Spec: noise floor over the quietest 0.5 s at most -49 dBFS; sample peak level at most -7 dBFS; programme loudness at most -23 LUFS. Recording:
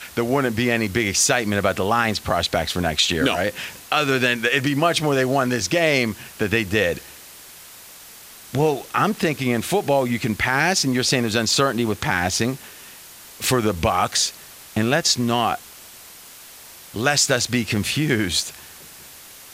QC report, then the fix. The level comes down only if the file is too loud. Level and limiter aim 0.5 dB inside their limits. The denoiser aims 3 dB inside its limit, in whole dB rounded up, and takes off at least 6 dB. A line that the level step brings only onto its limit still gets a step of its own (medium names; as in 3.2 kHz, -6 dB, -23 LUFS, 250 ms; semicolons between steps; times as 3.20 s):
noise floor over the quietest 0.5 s -43 dBFS: fail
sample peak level -5.5 dBFS: fail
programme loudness -20.5 LUFS: fail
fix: noise reduction 6 dB, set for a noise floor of -43 dBFS; trim -3 dB